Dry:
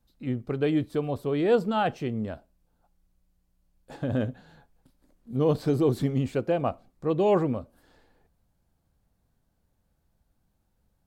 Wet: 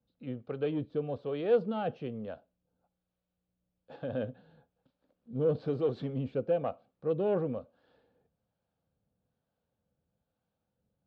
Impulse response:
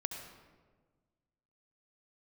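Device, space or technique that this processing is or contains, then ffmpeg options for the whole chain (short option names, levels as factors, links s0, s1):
guitar amplifier with harmonic tremolo: -filter_complex "[0:a]acrossover=split=490[s0][s1];[s0]aeval=exprs='val(0)*(1-0.5/2+0.5/2*cos(2*PI*1.1*n/s))':c=same[s2];[s1]aeval=exprs='val(0)*(1-0.5/2-0.5/2*cos(2*PI*1.1*n/s))':c=same[s3];[s2][s3]amix=inputs=2:normalize=0,asoftclip=type=tanh:threshold=0.126,highpass=110,equalizer=f=340:t=q:w=4:g=-5,equalizer=f=500:t=q:w=4:g=7,equalizer=f=1000:t=q:w=4:g=-4,equalizer=f=2000:t=q:w=4:g=-8,lowpass=f=3800:w=0.5412,lowpass=f=3800:w=1.3066,volume=0.631"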